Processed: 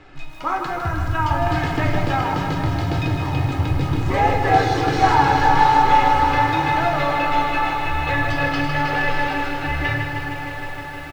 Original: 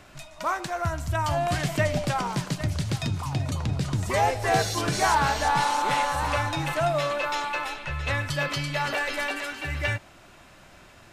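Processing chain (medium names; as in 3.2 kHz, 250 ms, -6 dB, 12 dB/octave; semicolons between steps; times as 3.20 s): low-pass 3.3 kHz 12 dB/octave; peaking EQ 270 Hz +10 dB 0.26 oct; comb 2.4 ms, depth 65%; echo that smears into a reverb 1489 ms, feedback 41%, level -11.5 dB; simulated room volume 110 m³, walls mixed, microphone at 0.58 m; bit-crushed delay 156 ms, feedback 80%, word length 8-bit, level -7 dB; trim +1.5 dB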